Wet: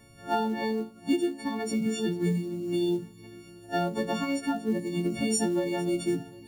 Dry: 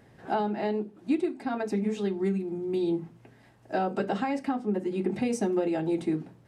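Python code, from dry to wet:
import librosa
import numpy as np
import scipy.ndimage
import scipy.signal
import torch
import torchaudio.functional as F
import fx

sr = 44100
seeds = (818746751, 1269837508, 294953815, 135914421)

y = fx.freq_snap(x, sr, grid_st=4)
y = fx.low_shelf(y, sr, hz=85.0, db=11.0)
y = fx.quant_float(y, sr, bits=4)
y = fx.echo_swing(y, sr, ms=747, ratio=1.5, feedback_pct=45, wet_db=-21)
y = fx.notch_cascade(y, sr, direction='rising', hz=1.2)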